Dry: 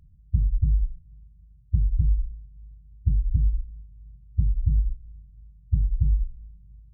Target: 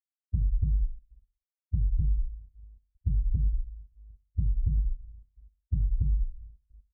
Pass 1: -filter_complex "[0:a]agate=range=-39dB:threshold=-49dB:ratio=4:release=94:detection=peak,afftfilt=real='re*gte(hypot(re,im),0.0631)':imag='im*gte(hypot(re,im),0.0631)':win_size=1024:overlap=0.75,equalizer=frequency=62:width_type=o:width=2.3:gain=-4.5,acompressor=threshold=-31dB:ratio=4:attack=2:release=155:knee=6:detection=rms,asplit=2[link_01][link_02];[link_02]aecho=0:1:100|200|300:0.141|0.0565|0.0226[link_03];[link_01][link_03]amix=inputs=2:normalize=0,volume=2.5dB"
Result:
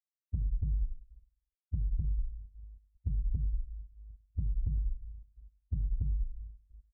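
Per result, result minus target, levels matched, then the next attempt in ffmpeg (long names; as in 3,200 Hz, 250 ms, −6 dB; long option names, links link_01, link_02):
echo 37 ms late; downward compressor: peak gain reduction +6.5 dB
-filter_complex "[0:a]agate=range=-39dB:threshold=-49dB:ratio=4:release=94:detection=peak,afftfilt=real='re*gte(hypot(re,im),0.0631)':imag='im*gte(hypot(re,im),0.0631)':win_size=1024:overlap=0.75,equalizer=frequency=62:width_type=o:width=2.3:gain=-4.5,acompressor=threshold=-31dB:ratio=4:attack=2:release=155:knee=6:detection=rms,asplit=2[link_01][link_02];[link_02]aecho=0:1:63|126|189:0.141|0.0565|0.0226[link_03];[link_01][link_03]amix=inputs=2:normalize=0,volume=2.5dB"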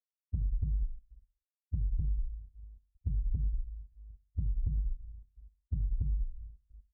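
downward compressor: peak gain reduction +6.5 dB
-filter_complex "[0:a]agate=range=-39dB:threshold=-49dB:ratio=4:release=94:detection=peak,afftfilt=real='re*gte(hypot(re,im),0.0631)':imag='im*gte(hypot(re,im),0.0631)':win_size=1024:overlap=0.75,equalizer=frequency=62:width_type=o:width=2.3:gain=-4.5,acompressor=threshold=-22.5dB:ratio=4:attack=2:release=155:knee=6:detection=rms,asplit=2[link_01][link_02];[link_02]aecho=0:1:63|126|189:0.141|0.0565|0.0226[link_03];[link_01][link_03]amix=inputs=2:normalize=0,volume=2.5dB"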